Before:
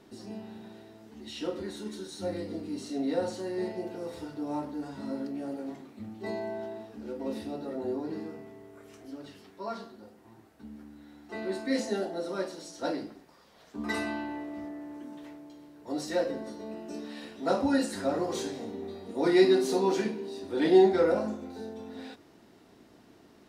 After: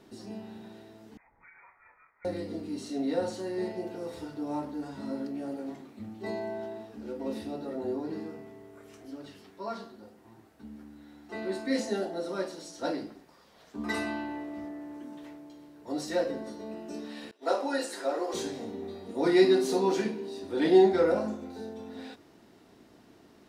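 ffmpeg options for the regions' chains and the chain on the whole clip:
-filter_complex "[0:a]asettb=1/sr,asplit=3[a][b][c];[a]atrim=end=1.174[d];[b]atrim=start=1.17:end=2.25,asetpts=PTS-STARTPTS,afade=t=in:d=0.004:c=qsin,afade=t=out:st=1.076:d=0.004:c=qsin,highpass=f=780:w=0.5412,highpass=f=780:w=1.3066,acompressor=threshold=-50dB:ratio=6:attack=3.2:release=140:knee=1:detection=peak,lowpass=f=2.4k:t=q:w=0.5098,lowpass=f=2.4k:t=q:w=0.6013,lowpass=f=2.4k:t=q:w=0.9,lowpass=f=2.4k:t=q:w=2.563,afreqshift=-2800[e];[c]atrim=start=2.246[f];[d][e]acrossfade=d=0.004:c1=hsin:c2=qsin[g];[g][f]acrossfade=d=0.004:c1=qsin:c2=hsin,asettb=1/sr,asplit=3[h][i][j];[h]atrim=end=17.314[k];[i]atrim=start=17.31:end=18.34,asetpts=PTS-STARTPTS,afade=t=in:d=0.004:c=qsin,afade=t=out:st=1.026:d=0.004:c=qsin,highpass=f=350:w=0.5412,highpass=f=350:w=1.3066,agate=range=-33dB:threshold=-41dB:ratio=3:release=100:detection=peak[l];[j]atrim=start=18.336[m];[k][l]acrossfade=d=0.004:c1=hsin:c2=qsin[n];[n][m]acrossfade=d=0.004:c1=qsin:c2=hsin"

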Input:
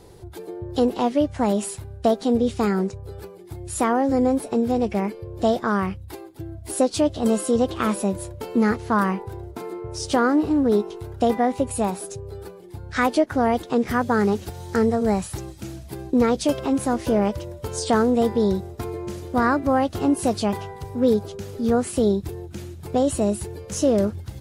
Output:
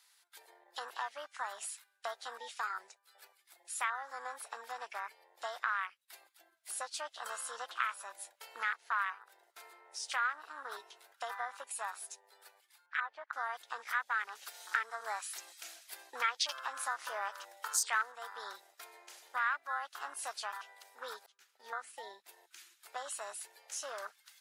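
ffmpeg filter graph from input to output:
-filter_complex "[0:a]asettb=1/sr,asplit=3[a][b][c];[a]atrim=end=12.864[d];[b]atrim=start=12.86:end=13.33,asetpts=PTS-STARTPTS,afade=t=in:d=0.004:c=qsin,afade=t=out:st=0.466:d=0.004:c=qsin,lowpass=1.6k,acrossover=split=310|960[e][f][g];[e]acompressor=threshold=-37dB:ratio=4[h];[f]acompressor=threshold=-25dB:ratio=4[i];[g]acompressor=threshold=-28dB:ratio=4[j];[h][i][j]amix=inputs=3:normalize=0[k];[c]atrim=start=13.326[l];[d][k]acrossfade=d=0.004:c1=hsin:c2=qsin[m];[m][l]acrossfade=d=0.004:c1=qsin:c2=hsin,asettb=1/sr,asplit=3[n][o][p];[n]atrim=end=14.354[q];[o]atrim=start=14.35:end=18.12,asetpts=PTS-STARTPTS,afade=t=in:d=0.004:c=qsin,afade=t=out:st=3.766:d=0.004:c=qsin,equalizer=f=77:w=0.41:g=-5,acontrast=45[r];[p]atrim=start=18.116[s];[q][r]acrossfade=d=0.004:c1=hsin:c2=qsin[t];[t][s]acrossfade=d=0.004:c1=qsin:c2=hsin,asettb=1/sr,asplit=3[u][v][w];[u]atrim=end=21.264[x];[v]atrim=start=21.26:end=22.28,asetpts=PTS-STARTPTS,afade=t=in:d=0.004:c=qsin,afade=t=out:st=1.016:d=0.004:c=qsin,agate=range=-33dB:threshold=-29dB:ratio=3:release=100:detection=peak,highshelf=f=2.4k:g=-8.5,bandreject=f=60:t=h:w=6,bandreject=f=120:t=h:w=6,bandreject=f=180:t=h:w=6,bandreject=f=240:t=h:w=6[y];[w]atrim=start=22.276[z];[x][y]acrossfade=d=0.004:c1=hsin:c2=qsin[aa];[aa][z]acrossfade=d=0.004:c1=qsin:c2=hsin,afwtdn=0.0355,highpass=f=1.4k:w=0.5412,highpass=f=1.4k:w=1.3066,acompressor=threshold=-48dB:ratio=2,volume=8.5dB"

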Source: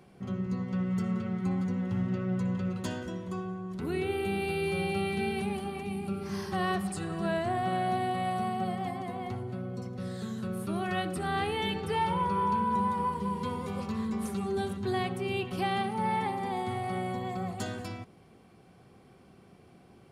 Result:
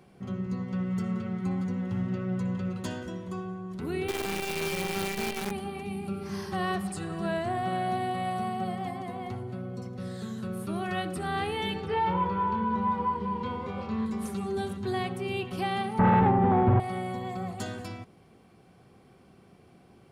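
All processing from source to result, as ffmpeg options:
-filter_complex "[0:a]asettb=1/sr,asplit=3[a][b][c];[a]atrim=end=4.084[d];[b]atrim=start=4.08:end=5.51,asetpts=PTS-STARTPTS,afade=t=in:d=0.004:c=qsin,afade=t=out:st=1.426:d=0.004:c=qsin,highpass=110,lowshelf=f=200:g=-4,acrusher=bits=6:dc=4:mix=0:aa=0.000001[e];[c]atrim=start=5.506[f];[d][e]acrossfade=d=0.004:c1=hsin:c2=qsin[g];[g][f]acrossfade=d=0.004:c1=qsin:c2=hsin,asettb=1/sr,asplit=3[h][i][j];[h]atrim=end=11.864[k];[i]atrim=start=11.86:end=14.06,asetpts=PTS-STARTPTS,afade=t=in:d=0.004:c=qsin,afade=t=out:st=2.196:d=0.004:c=qsin,lowpass=3.4k,asplit=2[l][m];[m]adelay=27,volume=-5dB[n];[l][n]amix=inputs=2:normalize=0,atrim=end_sample=97020[o];[j]atrim=start=14.056[p];[k][o]acrossfade=d=0.004:c1=hsin:c2=qsin[q];[q][p]acrossfade=d=0.004:c1=qsin:c2=hsin,asettb=1/sr,asplit=3[r][s][t];[r]atrim=end=15.994[u];[s]atrim=start=15.99:end=16.8,asetpts=PTS-STARTPTS,afade=t=in:d=0.004:c=qsin,afade=t=out:st=0.806:d=0.004:c=qsin,lowpass=1.3k,aemphasis=mode=reproduction:type=bsi,aeval=exprs='0.15*sin(PI/2*2*val(0)/0.15)':c=same[v];[t]atrim=start=16.796[w];[u][v]acrossfade=d=0.004:c1=hsin:c2=qsin[x];[x][w]acrossfade=d=0.004:c1=qsin:c2=hsin"

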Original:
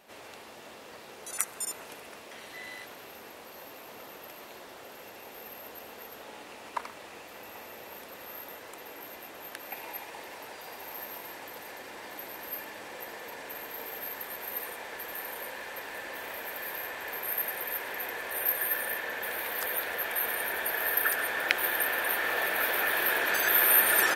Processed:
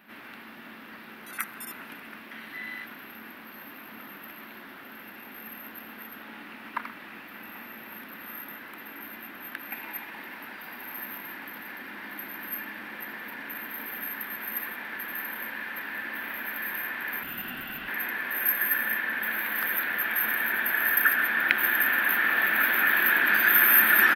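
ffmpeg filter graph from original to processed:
-filter_complex "[0:a]asettb=1/sr,asplit=3[a][b][c];[a]atrim=end=17.234[d];[b]atrim=start=17.23:end=17.88,asetpts=PTS-STARTPTS,afade=t=in:d=0.004:c=qsin,afade=t=out:st=0.646:d=0.004:c=qsin,lowpass=11k,aeval=exprs='val(0)*sin(2*PI*1000*n/s)':c=same[e];[c]atrim=start=17.876[f];[d][e]acrossfade=d=0.004:c1=hsin:c2=qsin[g];[g][f]acrossfade=d=0.004:c1=qsin:c2=hsin,bass=f=250:g=-4,treble=f=4k:g=1,acontrast=52,firequalizer=gain_entry='entry(110,0);entry(220,14);entry(460,-9);entry(1500,8);entry(7100,-20);entry(13000,2)':delay=0.05:min_phase=1,volume=-5.5dB"

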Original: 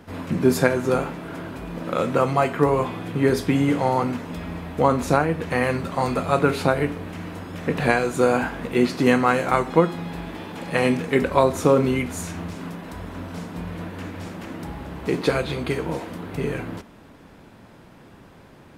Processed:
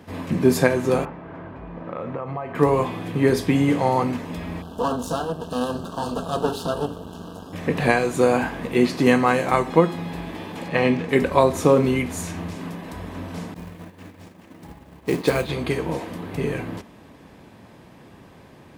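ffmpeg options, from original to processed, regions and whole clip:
-filter_complex "[0:a]asettb=1/sr,asplit=3[a][b][c];[a]atrim=end=1.054[d];[b]atrim=start=1.05:end=2.55,asetpts=PTS-STARTPTS,afade=t=in:d=0.004:c=qsin,afade=t=out:st=1.496:d=0.004:c=qsin,lowpass=1.4k,equalizer=f=270:t=o:w=2.3:g=-6.5,acompressor=threshold=-26dB:ratio=5:attack=3.2:release=140:knee=1:detection=peak[e];[c]atrim=start=2.546[f];[d][e]acrossfade=d=0.004:c1=hsin:c2=qsin[g];[g][f]acrossfade=d=0.004:c1=qsin:c2=hsin,asettb=1/sr,asplit=3[h][i][j];[h]atrim=end=4.624[k];[i]atrim=start=4.62:end=7.53,asetpts=PTS-STARTPTS,afade=t=in:d=0.004:c=qsin,afade=t=out:st=2.906:d=0.004:c=qsin,aecho=1:1:4.4:0.44,atrim=end_sample=128331,aeval=exprs='max(val(0),0)':c=same,asuperstop=centerf=2100:order=8:qfactor=1.7[l];[j]atrim=start=7.526[m];[k][l]acrossfade=d=0.004:c1=hsin:c2=qsin[n];[n][m]acrossfade=d=0.004:c1=qsin:c2=hsin,asettb=1/sr,asplit=3[o][p][q];[o]atrim=end=10.684[r];[p]atrim=start=10.68:end=11.09,asetpts=PTS-STARTPTS,afade=t=in:d=0.004:c=qsin,afade=t=out:st=0.406:d=0.004:c=qsin,lowpass=4.2k,aeval=exprs='sgn(val(0))*max(abs(val(0))-0.00299,0)':c=same[s];[q]atrim=start=11.086[t];[r][s]acrossfade=d=0.004:c1=hsin:c2=qsin[u];[u][t]acrossfade=d=0.004:c1=qsin:c2=hsin,asettb=1/sr,asplit=3[v][w][x];[v]atrim=end=13.544[y];[w]atrim=start=13.54:end=15.49,asetpts=PTS-STARTPTS,afade=t=in:d=0.004:c=qsin,afade=t=out:st=1.946:d=0.004:c=qsin,acrusher=bits=5:mode=log:mix=0:aa=0.000001,agate=range=-33dB:threshold=-26dB:ratio=3:release=100:detection=peak[z];[x]atrim=start=15.486[aa];[y][z]acrossfade=d=0.004:c1=hsin:c2=qsin[ab];[ab][aa]acrossfade=d=0.004:c1=qsin:c2=hsin,highpass=50,bandreject=f=1.4k:w=8.5,volume=1dB"

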